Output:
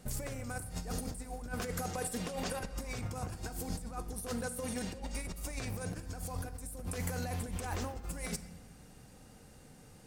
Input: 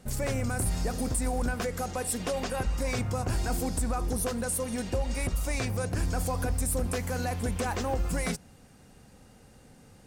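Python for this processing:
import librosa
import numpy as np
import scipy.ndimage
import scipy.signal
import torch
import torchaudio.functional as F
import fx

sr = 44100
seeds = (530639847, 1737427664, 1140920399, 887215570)

y = fx.high_shelf(x, sr, hz=6600.0, db=4.5)
y = fx.over_compress(y, sr, threshold_db=-32.0, ratio=-0.5)
y = fx.room_shoebox(y, sr, seeds[0], volume_m3=1100.0, walls='mixed', distance_m=0.47)
y = y * 10.0 ** (-6.0 / 20.0)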